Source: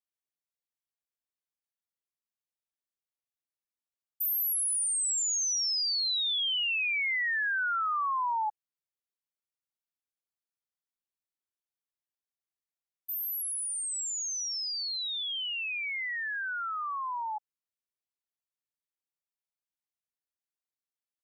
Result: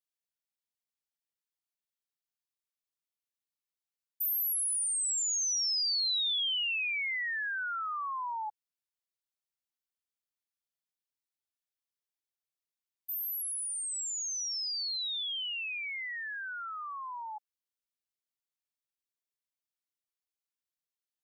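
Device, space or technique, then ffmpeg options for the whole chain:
presence and air boost: -af "equalizer=f=4000:t=o:w=1.9:g=5.5,highshelf=f=9200:g=6.5,volume=0.447"

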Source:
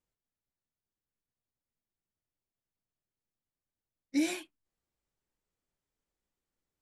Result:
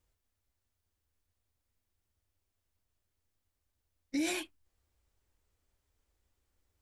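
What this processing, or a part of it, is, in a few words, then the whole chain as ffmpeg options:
car stereo with a boomy subwoofer: -af "lowshelf=f=110:t=q:w=3:g=7,alimiter=level_in=2.51:limit=0.0631:level=0:latency=1:release=47,volume=0.398,volume=2.24"

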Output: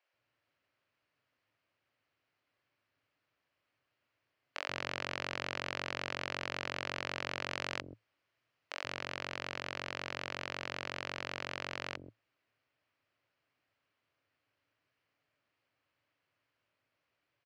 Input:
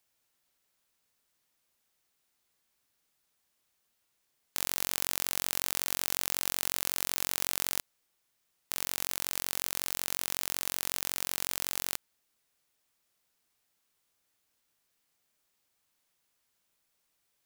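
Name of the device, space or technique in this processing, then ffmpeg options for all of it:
guitar cabinet: -filter_complex "[0:a]asettb=1/sr,asplit=3[s0][s1][s2];[s0]atrim=end=7.494[s3];[s1]atrim=start=7.49:end=8.93,asetpts=PTS-STARTPTS,afade=t=in:d=0.004:c=qsin,afade=t=out:st=1.436:d=0.004:c=qsin,highshelf=f=8300:g=8[s4];[s2]atrim=start=8.926[s5];[s3][s4]acrossfade=d=0.004:c1=hsin:c2=qsin[s6];[s6][s5]acrossfade=d=0.004:c1=qsin:c2=hsin,highpass=85,equalizer=f=110:t=q:w=4:g=9,equalizer=f=200:t=q:w=4:g=-9,equalizer=f=290:t=q:w=4:g=4,equalizer=f=580:t=q:w=4:g=5,equalizer=f=840:t=q:w=4:g=-4,equalizer=f=3600:t=q:w=4:g=-9,lowpass=f=3700:w=0.5412,lowpass=f=3700:w=1.3066,acrossover=split=420[s7][s8];[s7]adelay=130[s9];[s9][s8]amix=inputs=2:normalize=0,volume=1.33"

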